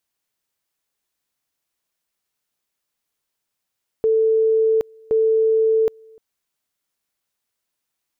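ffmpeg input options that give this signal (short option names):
-f lavfi -i "aevalsrc='pow(10,(-13.5-29.5*gte(mod(t,1.07),0.77))/20)*sin(2*PI*443*t)':d=2.14:s=44100"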